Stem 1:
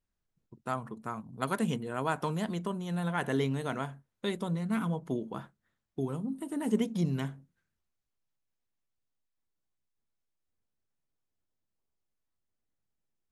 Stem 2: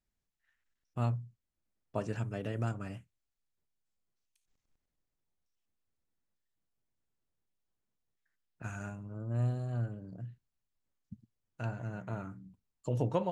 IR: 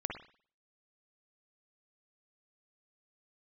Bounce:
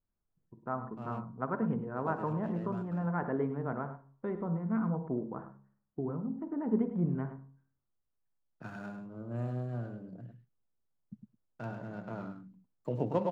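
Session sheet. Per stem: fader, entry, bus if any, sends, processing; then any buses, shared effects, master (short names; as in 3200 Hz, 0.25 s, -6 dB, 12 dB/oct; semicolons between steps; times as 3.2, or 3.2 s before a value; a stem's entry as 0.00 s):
-3.0 dB, 0.00 s, send -10.5 dB, echo send -10.5 dB, LPF 1500 Hz 24 dB/oct; de-hum 67.77 Hz, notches 17
+1.0 dB, 0.00 s, no send, echo send -7.5 dB, median filter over 15 samples; gate with hold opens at -59 dBFS; HPF 140 Hz 24 dB/oct; auto duck -16 dB, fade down 1.75 s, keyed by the first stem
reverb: on, pre-delay 49 ms
echo: echo 0.104 s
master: high shelf 3900 Hz -12 dB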